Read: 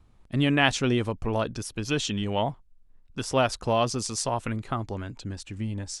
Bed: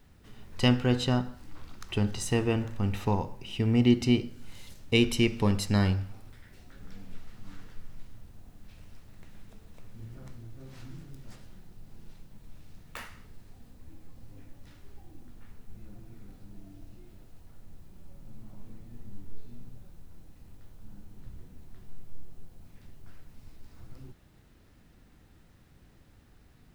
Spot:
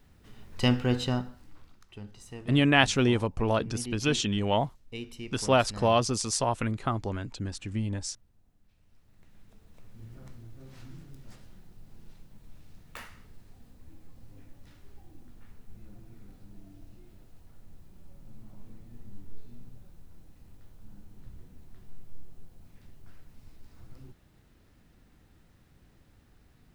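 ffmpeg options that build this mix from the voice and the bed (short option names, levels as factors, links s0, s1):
-filter_complex "[0:a]adelay=2150,volume=1.06[s0];[1:a]volume=4.73,afade=t=out:st=0.96:d=0.91:silence=0.16788,afade=t=in:st=8.81:d=1.35:silence=0.188365[s1];[s0][s1]amix=inputs=2:normalize=0"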